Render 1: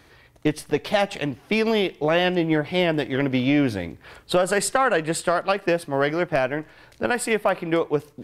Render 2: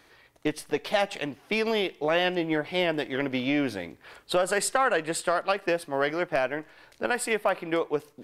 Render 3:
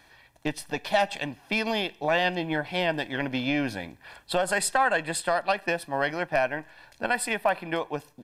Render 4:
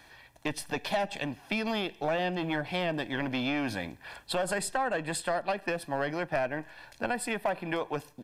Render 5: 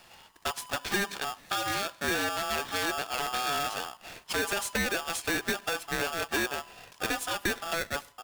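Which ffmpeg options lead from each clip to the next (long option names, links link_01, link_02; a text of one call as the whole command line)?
ffmpeg -i in.wav -af "equalizer=frequency=81:width=0.47:gain=-11.5,volume=-3dB" out.wav
ffmpeg -i in.wav -af "aecho=1:1:1.2:0.56" out.wav
ffmpeg -i in.wav -filter_complex "[0:a]acrossover=split=580[link_01][link_02];[link_01]asoftclip=type=hard:threshold=-32dB[link_03];[link_02]acompressor=threshold=-33dB:ratio=6[link_04];[link_03][link_04]amix=inputs=2:normalize=0,volume=1.5dB" out.wav
ffmpeg -i in.wav -af "aeval=exprs='val(0)*sgn(sin(2*PI*1000*n/s))':channel_layout=same" out.wav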